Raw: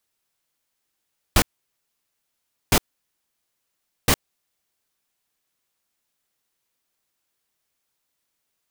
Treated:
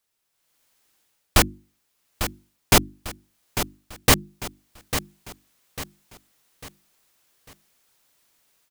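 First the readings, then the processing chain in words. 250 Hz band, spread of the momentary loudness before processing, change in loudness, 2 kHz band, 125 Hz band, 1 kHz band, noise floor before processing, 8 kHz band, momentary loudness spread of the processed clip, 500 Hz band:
+3.0 dB, 4 LU, 0.0 dB, +4.0 dB, +3.0 dB, +4.0 dB, -78 dBFS, +4.0 dB, 19 LU, +4.0 dB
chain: hum notches 50/100/150/200/250/300/350 Hz; level rider gain up to 12 dB; feedback delay 848 ms, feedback 40%, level -10 dB; trim -1 dB

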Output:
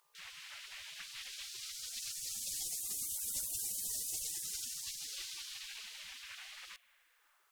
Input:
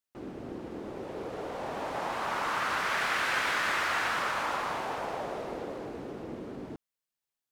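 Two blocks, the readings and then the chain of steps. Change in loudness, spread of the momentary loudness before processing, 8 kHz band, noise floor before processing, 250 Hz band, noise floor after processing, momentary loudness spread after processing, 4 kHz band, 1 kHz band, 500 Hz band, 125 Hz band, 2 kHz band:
-7.5 dB, 14 LU, +9.0 dB, under -85 dBFS, -28.0 dB, -72 dBFS, 12 LU, -4.0 dB, under -30 dB, -33.0 dB, -19.0 dB, -20.0 dB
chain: spring tank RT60 2.9 s, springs 48 ms, chirp 40 ms, DRR 19 dB; mains buzz 60 Hz, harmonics 20, -64 dBFS -7 dB/octave; spectral gate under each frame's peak -30 dB weak; trim +13.5 dB

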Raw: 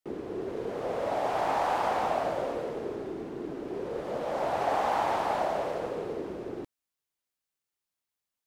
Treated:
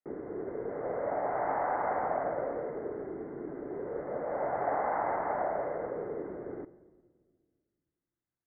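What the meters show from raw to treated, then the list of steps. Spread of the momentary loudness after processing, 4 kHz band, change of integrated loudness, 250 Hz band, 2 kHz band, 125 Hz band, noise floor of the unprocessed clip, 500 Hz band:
10 LU, under -40 dB, -3.0 dB, -3.5 dB, -3.5 dB, -4.0 dB, under -85 dBFS, -2.0 dB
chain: rippled Chebyshev low-pass 2.1 kHz, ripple 3 dB; simulated room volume 2100 m³, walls mixed, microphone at 0.36 m; trim -2 dB

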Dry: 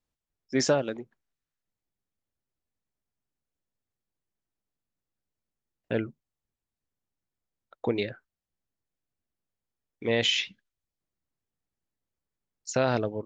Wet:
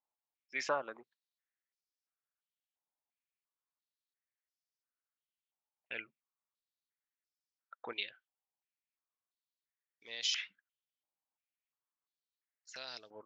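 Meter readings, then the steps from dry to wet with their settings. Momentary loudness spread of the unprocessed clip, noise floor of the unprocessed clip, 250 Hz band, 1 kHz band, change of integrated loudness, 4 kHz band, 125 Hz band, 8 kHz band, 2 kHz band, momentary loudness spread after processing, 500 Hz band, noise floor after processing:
13 LU, under -85 dBFS, -25.5 dB, -8.5 dB, -11.0 dB, -9.0 dB, -32.5 dB, -10.0 dB, -8.0 dB, 16 LU, -16.5 dB, under -85 dBFS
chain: step-sequenced band-pass 2.9 Hz 860–5200 Hz; trim +3.5 dB

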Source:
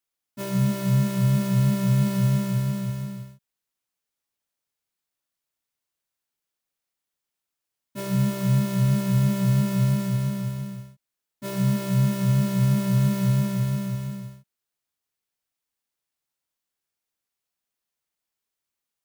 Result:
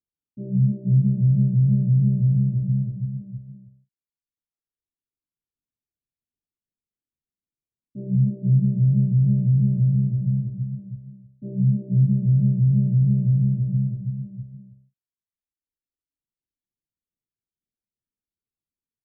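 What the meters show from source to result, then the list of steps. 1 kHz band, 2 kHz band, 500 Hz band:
under -35 dB, under -40 dB, under -10 dB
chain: Gaussian low-pass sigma 24 samples; reverb removal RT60 1.5 s; on a send: multi-tap echo 54/465/502 ms -8.5/-4/-15 dB; on the sum: tape noise reduction on one side only decoder only; trim +4.5 dB

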